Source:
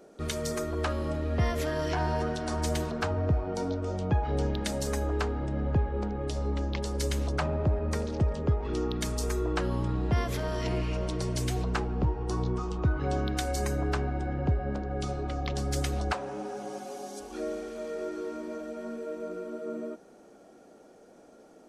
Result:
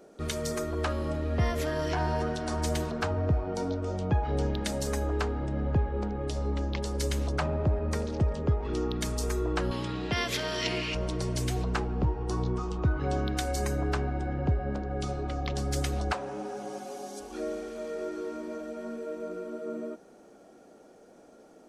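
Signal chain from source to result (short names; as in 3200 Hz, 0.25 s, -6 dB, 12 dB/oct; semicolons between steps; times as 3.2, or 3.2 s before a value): 9.71–10.95 weighting filter D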